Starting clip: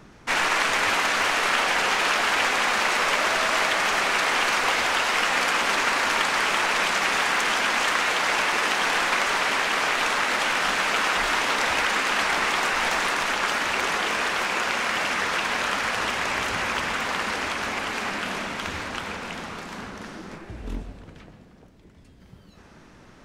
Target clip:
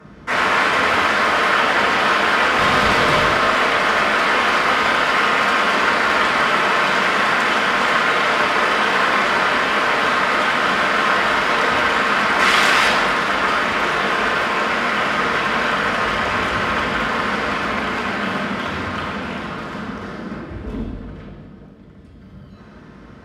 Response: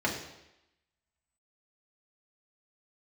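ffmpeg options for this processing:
-filter_complex "[0:a]asettb=1/sr,asplit=3[a][b][c];[a]atrim=end=2.584[d];[b]atrim=start=2.58:end=3.24,asetpts=PTS-STARTPTS,afade=t=in:d=0.004:c=qsin,afade=t=out:st=0.656:d=0.004:c=qsin,aeval=exprs='0.355*(cos(1*acos(clip(val(0)/0.355,-1,1)))-cos(1*PI/2))+0.112*(cos(4*acos(clip(val(0)/0.355,-1,1)))-cos(4*PI/2))':c=same[e];[c]atrim=start=3.236[f];[d][e]acrossfade=d=0.004:c1=hsin:c2=qsin[g];[g][f]acrossfade=d=0.004:c1=qsin:c2=hsin,asettb=1/sr,asplit=3[h][i][j];[h]atrim=end=12.394[k];[i]atrim=start=12.39:end=12.88,asetpts=PTS-STARTPTS,afade=t=in:d=0.004:c=qsin,afade=t=out:st=0.486:d=0.004:c=qsin,highshelf=f=2.2k:g=11[l];[j]atrim=start=12.876[m];[k][l]acrossfade=d=0.004:c1=hsin:c2=qsin[n];[n][m]acrossfade=d=0.004:c1=qsin:c2=hsin[o];[1:a]atrim=start_sample=2205,asetrate=30870,aresample=44100[p];[o][p]afir=irnorm=-1:irlink=0,volume=-5.5dB"

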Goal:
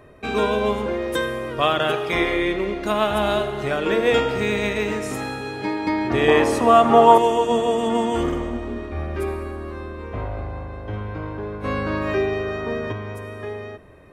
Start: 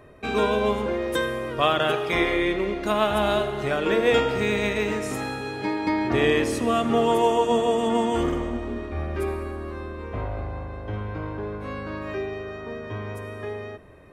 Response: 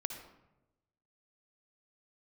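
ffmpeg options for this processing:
-filter_complex "[0:a]asettb=1/sr,asplit=3[a][b][c];[a]atrim=end=6.284[d];[b]atrim=start=6.28:end=7.18,asetpts=PTS-STARTPTS,afade=t=in:d=0.004:c=qsin,afade=t=out:st=0.896:d=0.004:c=qsin,equalizer=f=870:w=1:g=13[e];[c]atrim=start=7.176[f];[d][e]acrossfade=d=0.004:c1=hsin:c2=qsin[g];[g][f]acrossfade=d=0.004:c1=qsin:c2=hsin,asplit=3[h][i][j];[h]afade=t=out:st=11.63:d=0.02[k];[i]acontrast=79,afade=t=in:st=11.63:d=0.02,afade=t=out:st=12.91:d=0.02[l];[j]afade=t=in:st=12.91:d=0.02[m];[k][l][m]amix=inputs=3:normalize=0,volume=1.5dB"

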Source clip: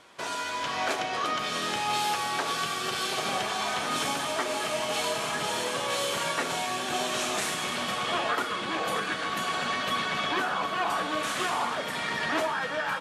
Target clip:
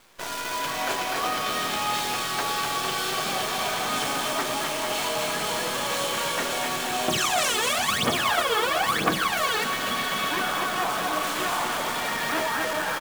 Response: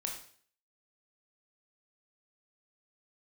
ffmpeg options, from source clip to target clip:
-filter_complex "[0:a]aecho=1:1:250|450|610|738|840.4:0.631|0.398|0.251|0.158|0.1,asettb=1/sr,asplit=3[a][b][c];[a]atrim=end=7.084[d];[b]atrim=start=7.08:end=9.64,asetpts=PTS-STARTPTS,afade=t=in:d=0.004:c=qsin,afade=t=out:st=2.556:d=0.004:c=qsin,aphaser=in_gain=1:out_gain=1:delay=2.4:decay=0.79:speed=1:type=triangular[e];[c]atrim=start=9.636[f];[d][e]acrossfade=d=0.004:c1=hsin:c2=qsin[g];[g][f]acrossfade=d=0.004:c1=qsin:c2=hsin,acrusher=bits=6:dc=4:mix=0:aa=0.000001"

